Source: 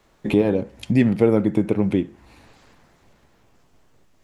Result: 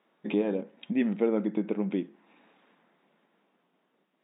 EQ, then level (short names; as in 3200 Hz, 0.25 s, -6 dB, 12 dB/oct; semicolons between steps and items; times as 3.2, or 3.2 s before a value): brick-wall FIR band-pass 160–3800 Hz; -9.0 dB